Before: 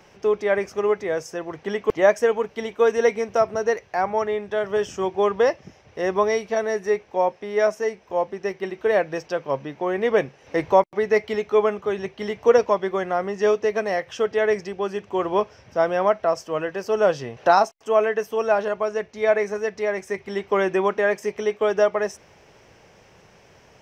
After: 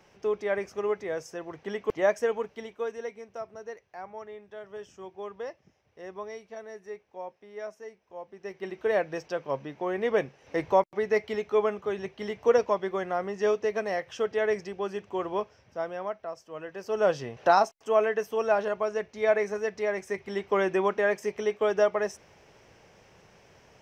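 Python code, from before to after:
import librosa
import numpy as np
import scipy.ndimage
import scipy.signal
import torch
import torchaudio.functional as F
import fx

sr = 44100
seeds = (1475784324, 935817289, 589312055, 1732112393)

y = fx.gain(x, sr, db=fx.line((2.41, -7.5), (3.1, -18.5), (8.23, -18.5), (8.71, -6.0), (15.01, -6.0), (16.41, -17.0), (17.09, -4.5)))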